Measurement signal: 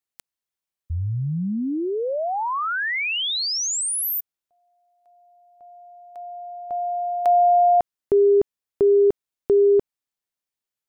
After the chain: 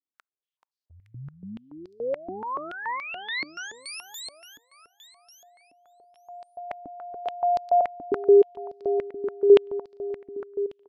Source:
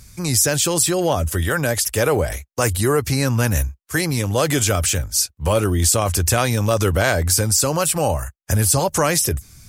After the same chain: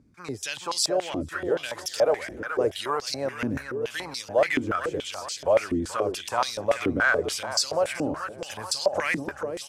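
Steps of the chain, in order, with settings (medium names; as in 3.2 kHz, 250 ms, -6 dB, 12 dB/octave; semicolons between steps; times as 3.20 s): on a send: feedback delay 432 ms, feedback 50%, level -8 dB; on the sum: step-sequenced band-pass 7 Hz 290–4600 Hz; trim +3.5 dB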